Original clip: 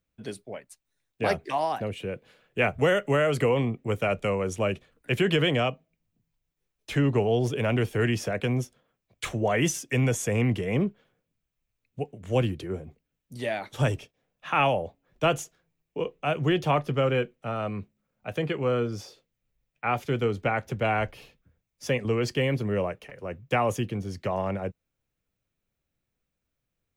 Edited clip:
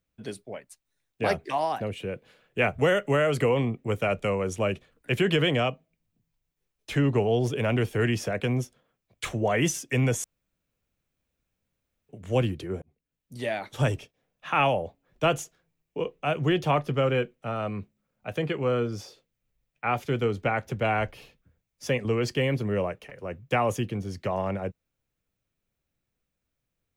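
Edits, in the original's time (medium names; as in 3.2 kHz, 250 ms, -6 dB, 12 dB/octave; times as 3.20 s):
10.24–12.09 s: room tone
12.82–13.40 s: fade in linear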